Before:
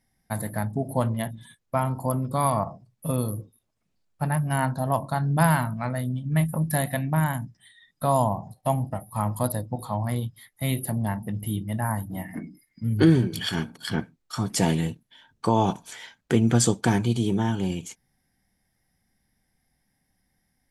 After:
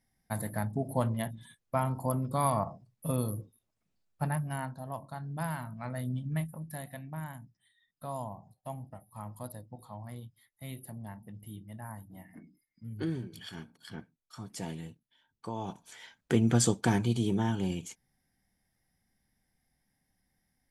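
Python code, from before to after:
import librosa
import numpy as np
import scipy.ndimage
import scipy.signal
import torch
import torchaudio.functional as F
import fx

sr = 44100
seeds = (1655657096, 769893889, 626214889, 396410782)

y = fx.gain(x, sr, db=fx.line((4.23, -5.0), (4.76, -15.0), (5.57, -15.0), (6.21, -4.0), (6.55, -16.5), (15.6, -16.5), (16.18, -5.0)))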